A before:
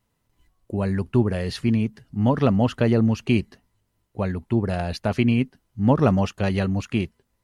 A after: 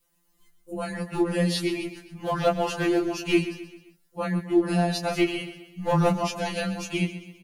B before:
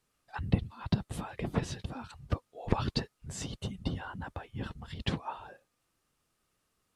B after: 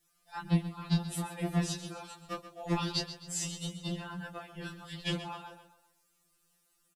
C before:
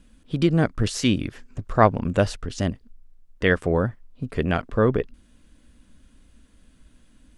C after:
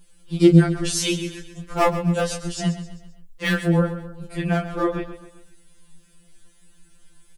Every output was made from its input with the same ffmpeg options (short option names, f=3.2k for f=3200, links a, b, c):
-af "aeval=exprs='clip(val(0),-1,0.237)':c=same,flanger=delay=17.5:depth=6.9:speed=1.6,crystalizer=i=2:c=0,aecho=1:1:131|262|393|524:0.237|0.107|0.048|0.0216,afftfilt=real='re*2.83*eq(mod(b,8),0)':imag='im*2.83*eq(mod(b,8),0)':win_size=2048:overlap=0.75,volume=4.5dB"